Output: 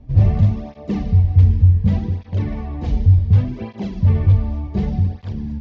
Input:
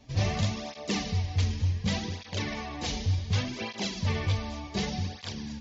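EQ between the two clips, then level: tilt EQ -4.5 dB/octave; treble shelf 4 kHz -8.5 dB; 0.0 dB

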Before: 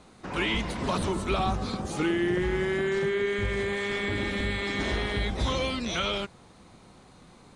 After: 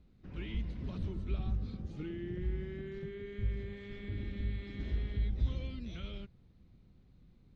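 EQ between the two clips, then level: distance through air 220 m; amplifier tone stack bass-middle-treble 10-0-1; +6.0 dB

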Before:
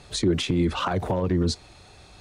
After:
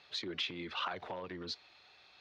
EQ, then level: band-pass filter 4.7 kHz, Q 0.78; distance through air 290 m; +1.5 dB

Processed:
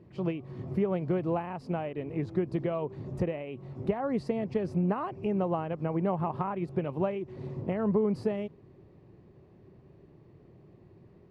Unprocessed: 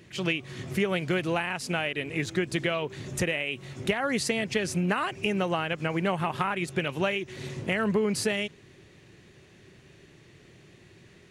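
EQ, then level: distance through air 450 m; high-order bell 2.3 kHz -13.5 dB; 0.0 dB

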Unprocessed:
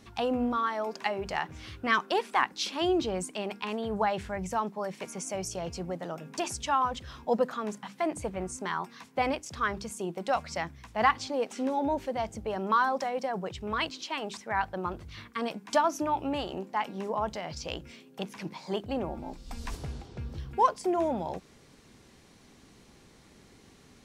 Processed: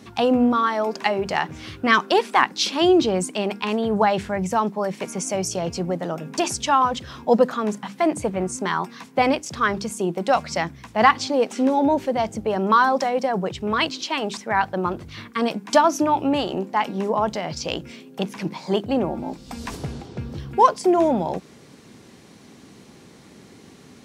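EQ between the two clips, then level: Bessel high-pass 190 Hz, order 2; bass shelf 330 Hz +9 dB; dynamic bell 4.8 kHz, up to +3 dB, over -43 dBFS, Q 0.88; +7.5 dB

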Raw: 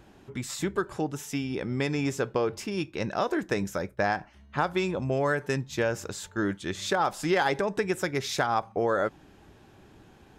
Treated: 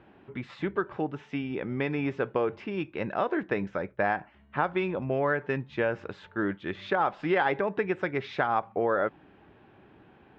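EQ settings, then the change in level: high-pass 150 Hz 6 dB/octave; low-pass 2.9 kHz 24 dB/octave; 0.0 dB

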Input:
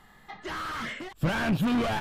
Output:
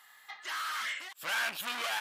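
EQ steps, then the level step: high-pass 1.3 kHz 12 dB/octave; treble shelf 7.2 kHz +8 dB; +1.0 dB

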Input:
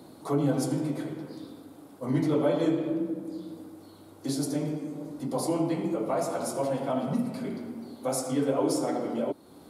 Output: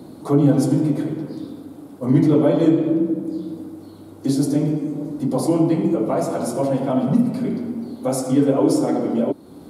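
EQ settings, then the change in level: bass shelf 160 Hz +7.5 dB; peaking EQ 260 Hz +6 dB 2.2 oct; +3.5 dB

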